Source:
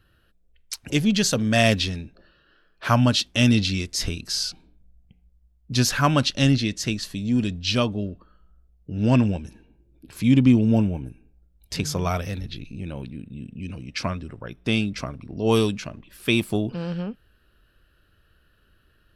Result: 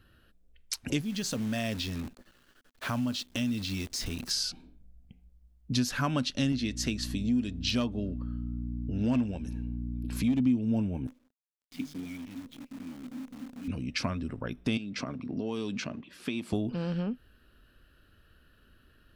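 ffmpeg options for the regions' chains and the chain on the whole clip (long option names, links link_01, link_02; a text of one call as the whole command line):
ffmpeg -i in.wav -filter_complex "[0:a]asettb=1/sr,asplit=3[link_01][link_02][link_03];[link_01]atrim=end=1.014[link_04];[link_02]atrim=start=1.01:end=4.31,asetpts=PTS-STARTPTS,afade=type=in:duration=0.004:curve=qsin,afade=type=out:start_time=3.296:duration=0.004:curve=qsin,acompressor=threshold=-36dB:ratio=2:attack=3.2:release=140:knee=1:detection=peak,acrusher=bits=8:dc=4:mix=0:aa=0.000001[link_05];[link_03]atrim=start=4.306[link_06];[link_04][link_05]acrossfade=duration=0.004:curve1=hsin:curve2=qsin[link_07];[link_07][link_06]acrossfade=duration=0.004:curve1=qsin:curve2=hsin,asettb=1/sr,asplit=3[link_08][link_09][link_10];[link_08]atrim=end=6.524[link_11];[link_09]atrim=start=6.52:end=10.4,asetpts=PTS-STARTPTS,afade=type=in:duration=0.004:curve=qsin,afade=type=out:start_time=3.876:duration=0.004:curve=qsin,bass=frequency=250:gain=-3,treble=frequency=4000:gain=0,asoftclip=type=hard:threshold=-14dB,aeval=exprs='val(0)+0.02*(sin(2*PI*60*n/s)+sin(2*PI*2*60*n/s)/2+sin(2*PI*3*60*n/s)/3+sin(2*PI*4*60*n/s)/4+sin(2*PI*5*60*n/s)/5)':channel_layout=same[link_12];[link_10]atrim=start=10.396[link_13];[link_11][link_12]acrossfade=duration=0.004:curve1=hsin:curve2=qsin[link_14];[link_14][link_13]acrossfade=duration=0.004:curve1=qsin:curve2=hsin,asettb=1/sr,asplit=3[link_15][link_16][link_17];[link_15]atrim=end=11.074[link_18];[link_16]atrim=start=11.07:end=13.68,asetpts=PTS-STARTPTS,afade=type=in:duration=0.004:curve=qsin,afade=type=out:start_time=2.606:duration=0.004:curve=qsin,asplit=3[link_19][link_20][link_21];[link_19]bandpass=frequency=270:width_type=q:width=8,volume=0dB[link_22];[link_20]bandpass=frequency=2290:width_type=q:width=8,volume=-6dB[link_23];[link_21]bandpass=frequency=3010:width_type=q:width=8,volume=-9dB[link_24];[link_22][link_23][link_24]amix=inputs=3:normalize=0,equalizer=frequency=1000:width_type=o:width=2.2:gain=-10.5,acrusher=bits=9:dc=4:mix=0:aa=0.000001[link_25];[link_17]atrim=start=13.676[link_26];[link_18][link_25]acrossfade=duration=0.004:curve1=hsin:curve2=qsin[link_27];[link_27][link_26]acrossfade=duration=0.004:curve1=qsin:curve2=hsin,asettb=1/sr,asplit=3[link_28][link_29][link_30];[link_28]atrim=end=14.774[link_31];[link_29]atrim=start=14.77:end=16.53,asetpts=PTS-STARTPTS,afade=type=in:duration=0.004:curve=qsin,afade=type=out:start_time=1.756:duration=0.004:curve=qsin,acompressor=threshold=-28dB:ratio=10:attack=3.2:release=140:knee=1:detection=peak,highpass=150,lowpass=6200[link_32];[link_30]atrim=start=16.526[link_33];[link_31][link_32]acrossfade=duration=0.004:curve1=hsin:curve2=qsin[link_34];[link_34][link_33]acrossfade=duration=0.004:curve1=qsin:curve2=hsin,equalizer=frequency=250:width=5.1:gain=9,acompressor=threshold=-29dB:ratio=3" out.wav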